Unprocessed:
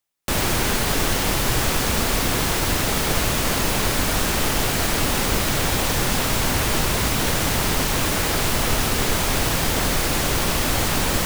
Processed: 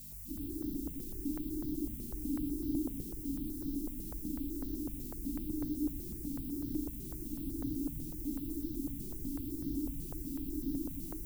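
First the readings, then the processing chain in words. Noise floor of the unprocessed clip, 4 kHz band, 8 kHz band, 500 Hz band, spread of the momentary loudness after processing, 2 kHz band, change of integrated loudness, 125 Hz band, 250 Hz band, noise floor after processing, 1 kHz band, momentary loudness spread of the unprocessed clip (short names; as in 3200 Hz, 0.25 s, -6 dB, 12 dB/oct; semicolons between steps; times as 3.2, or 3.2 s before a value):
-22 dBFS, -38.5 dB, -28.5 dB, -23.5 dB, 5 LU, under -40 dB, -18.5 dB, -20.5 dB, -9.5 dB, -44 dBFS, -38.0 dB, 0 LU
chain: notch 910 Hz, Q 6.7; limiter -17 dBFS, peak gain reduction 9 dB; hum 50 Hz, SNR 10 dB; vocal tract filter u; loudest bins only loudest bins 8; added noise violet -50 dBFS; darkening echo 71 ms, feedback 82%, low-pass 1400 Hz, level -9 dB; FDN reverb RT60 2.4 s, low-frequency decay 1.4×, high-frequency decay 0.9×, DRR 2.5 dB; step phaser 8 Hz 290–2400 Hz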